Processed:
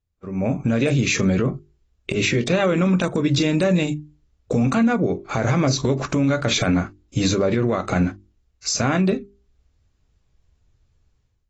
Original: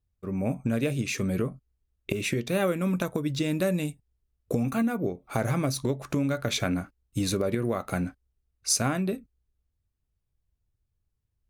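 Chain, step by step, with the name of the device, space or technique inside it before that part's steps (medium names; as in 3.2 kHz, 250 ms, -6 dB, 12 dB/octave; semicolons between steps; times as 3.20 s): hum notches 50/100/150/200/250/300/350/400 Hz; low-bitrate web radio (level rider gain up to 16 dB; peak limiter -11 dBFS, peak gain reduction 9.5 dB; AAC 24 kbps 24 kHz)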